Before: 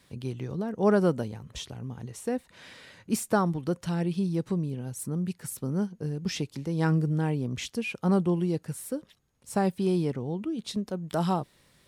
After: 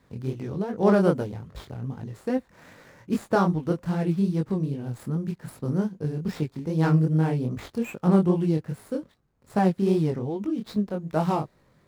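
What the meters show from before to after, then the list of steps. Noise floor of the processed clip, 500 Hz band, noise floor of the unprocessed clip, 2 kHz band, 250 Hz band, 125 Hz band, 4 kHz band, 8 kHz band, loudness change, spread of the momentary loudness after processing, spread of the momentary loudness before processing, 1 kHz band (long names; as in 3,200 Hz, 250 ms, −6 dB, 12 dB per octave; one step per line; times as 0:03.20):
−63 dBFS, +3.5 dB, −64 dBFS, +1.0 dB, +3.5 dB, +4.0 dB, −5.0 dB, can't be measured, +3.5 dB, 13 LU, 12 LU, +3.5 dB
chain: running median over 15 samples
chorus effect 2.5 Hz, delay 19 ms, depth 7.4 ms
level +6.5 dB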